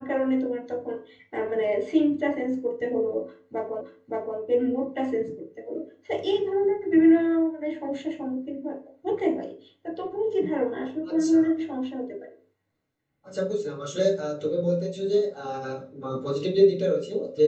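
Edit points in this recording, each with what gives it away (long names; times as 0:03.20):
0:03.81: the same again, the last 0.57 s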